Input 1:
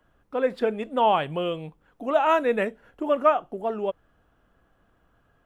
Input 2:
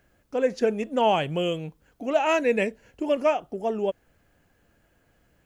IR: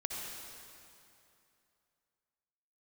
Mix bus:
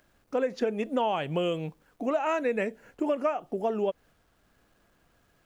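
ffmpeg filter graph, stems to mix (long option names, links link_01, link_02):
-filter_complex "[0:a]acrusher=bits=10:mix=0:aa=0.000001,volume=-4dB,asplit=2[link_01][link_02];[1:a]highpass=110,acompressor=mode=upward:threshold=-39dB:ratio=2.5,volume=-3dB[link_03];[link_02]apad=whole_len=240748[link_04];[link_03][link_04]sidechaingate=range=-16dB:threshold=-57dB:ratio=16:detection=peak[link_05];[link_01][link_05]amix=inputs=2:normalize=0,acompressor=threshold=-24dB:ratio=6"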